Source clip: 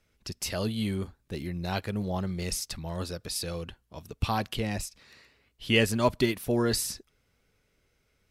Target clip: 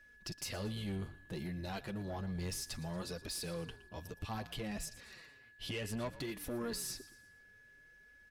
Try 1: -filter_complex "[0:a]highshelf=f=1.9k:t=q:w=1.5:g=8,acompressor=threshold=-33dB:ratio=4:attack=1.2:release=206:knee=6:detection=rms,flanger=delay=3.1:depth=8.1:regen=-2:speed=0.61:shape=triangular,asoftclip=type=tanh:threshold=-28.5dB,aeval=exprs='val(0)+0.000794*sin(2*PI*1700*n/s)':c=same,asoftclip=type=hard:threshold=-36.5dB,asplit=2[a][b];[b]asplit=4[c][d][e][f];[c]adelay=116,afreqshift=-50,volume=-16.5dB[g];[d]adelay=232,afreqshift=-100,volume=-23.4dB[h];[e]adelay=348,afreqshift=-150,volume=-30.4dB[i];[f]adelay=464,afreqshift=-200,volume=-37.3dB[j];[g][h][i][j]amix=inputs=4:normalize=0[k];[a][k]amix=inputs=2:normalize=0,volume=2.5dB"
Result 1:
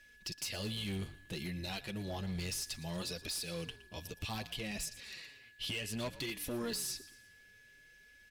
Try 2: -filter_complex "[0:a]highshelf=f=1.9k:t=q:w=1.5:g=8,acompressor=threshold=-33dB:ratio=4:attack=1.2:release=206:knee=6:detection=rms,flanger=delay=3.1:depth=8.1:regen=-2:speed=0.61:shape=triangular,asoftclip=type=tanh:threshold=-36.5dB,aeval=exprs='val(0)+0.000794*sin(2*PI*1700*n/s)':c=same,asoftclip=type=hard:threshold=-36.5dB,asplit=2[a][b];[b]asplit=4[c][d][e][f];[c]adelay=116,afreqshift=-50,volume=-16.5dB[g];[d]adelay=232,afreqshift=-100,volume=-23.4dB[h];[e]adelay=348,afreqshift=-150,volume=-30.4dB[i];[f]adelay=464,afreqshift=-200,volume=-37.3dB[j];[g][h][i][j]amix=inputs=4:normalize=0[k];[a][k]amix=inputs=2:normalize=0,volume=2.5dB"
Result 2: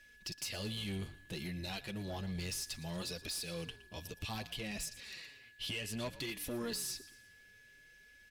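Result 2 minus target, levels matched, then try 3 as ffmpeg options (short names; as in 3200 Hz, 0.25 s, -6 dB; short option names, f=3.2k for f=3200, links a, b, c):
4000 Hz band +3.5 dB
-filter_complex "[0:a]acompressor=threshold=-33dB:ratio=4:attack=1.2:release=206:knee=6:detection=rms,flanger=delay=3.1:depth=8.1:regen=-2:speed=0.61:shape=triangular,asoftclip=type=tanh:threshold=-36.5dB,aeval=exprs='val(0)+0.000794*sin(2*PI*1700*n/s)':c=same,asoftclip=type=hard:threshold=-36.5dB,asplit=2[a][b];[b]asplit=4[c][d][e][f];[c]adelay=116,afreqshift=-50,volume=-16.5dB[g];[d]adelay=232,afreqshift=-100,volume=-23.4dB[h];[e]adelay=348,afreqshift=-150,volume=-30.4dB[i];[f]adelay=464,afreqshift=-200,volume=-37.3dB[j];[g][h][i][j]amix=inputs=4:normalize=0[k];[a][k]amix=inputs=2:normalize=0,volume=2.5dB"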